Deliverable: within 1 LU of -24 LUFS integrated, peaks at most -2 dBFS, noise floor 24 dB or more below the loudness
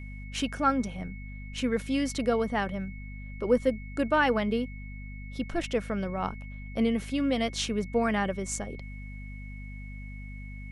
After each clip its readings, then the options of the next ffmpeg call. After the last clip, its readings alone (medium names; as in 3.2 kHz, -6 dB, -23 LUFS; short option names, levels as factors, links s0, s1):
hum 50 Hz; highest harmonic 250 Hz; hum level -38 dBFS; steady tone 2.2 kHz; tone level -48 dBFS; loudness -29.5 LUFS; peak level -11.5 dBFS; loudness target -24.0 LUFS
-> -af "bandreject=f=50:t=h:w=4,bandreject=f=100:t=h:w=4,bandreject=f=150:t=h:w=4,bandreject=f=200:t=h:w=4,bandreject=f=250:t=h:w=4"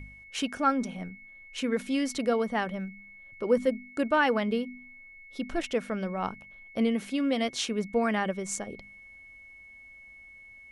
hum not found; steady tone 2.2 kHz; tone level -48 dBFS
-> -af "bandreject=f=2200:w=30"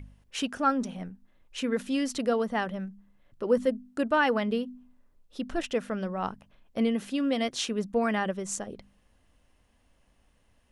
steady tone not found; loudness -29.5 LUFS; peak level -12.5 dBFS; loudness target -24.0 LUFS
-> -af "volume=1.88"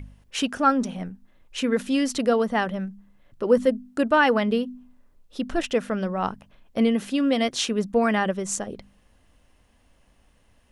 loudness -24.0 LUFS; peak level -7.0 dBFS; noise floor -61 dBFS